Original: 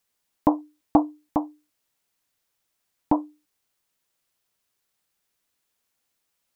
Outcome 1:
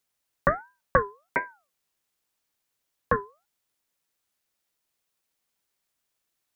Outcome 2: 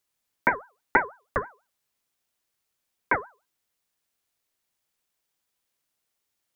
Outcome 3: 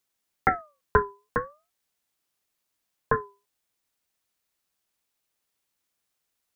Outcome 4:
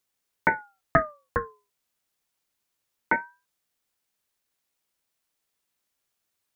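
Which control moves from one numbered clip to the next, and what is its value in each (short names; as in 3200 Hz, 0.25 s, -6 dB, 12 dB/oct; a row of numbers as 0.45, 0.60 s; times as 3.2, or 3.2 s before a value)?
ring modulator with a swept carrier, at: 1.4, 6.1, 0.45, 0.28 Hz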